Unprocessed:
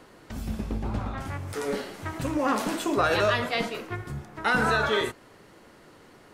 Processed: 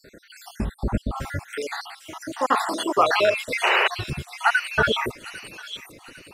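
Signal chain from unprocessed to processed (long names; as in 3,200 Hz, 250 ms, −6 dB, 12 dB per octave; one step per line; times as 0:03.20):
time-frequency cells dropped at random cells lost 68%
0:01.47–0:03.37: meter weighting curve A
0:03.63–0:03.88: sound drawn into the spectrogram noise 360–3,000 Hz −27 dBFS
delay with a high-pass on its return 801 ms, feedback 40%, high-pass 3,800 Hz, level −3.5 dB
level +8 dB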